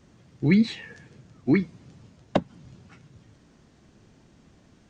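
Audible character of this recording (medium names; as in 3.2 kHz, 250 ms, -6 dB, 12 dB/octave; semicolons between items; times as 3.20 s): noise floor -58 dBFS; spectral tilt -6.5 dB/octave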